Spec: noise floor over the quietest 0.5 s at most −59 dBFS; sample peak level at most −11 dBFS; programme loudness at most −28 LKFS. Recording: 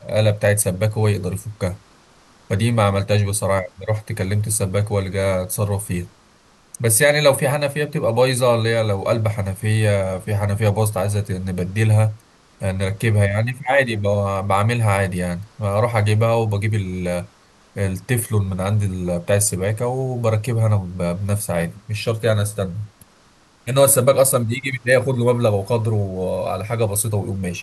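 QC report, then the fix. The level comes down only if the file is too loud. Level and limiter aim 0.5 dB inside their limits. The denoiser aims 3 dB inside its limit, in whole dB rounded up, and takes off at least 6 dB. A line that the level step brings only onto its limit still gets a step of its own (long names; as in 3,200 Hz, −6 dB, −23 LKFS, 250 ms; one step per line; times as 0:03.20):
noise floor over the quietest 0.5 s −53 dBFS: out of spec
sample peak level −3.5 dBFS: out of spec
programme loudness −19.5 LKFS: out of spec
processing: level −9 dB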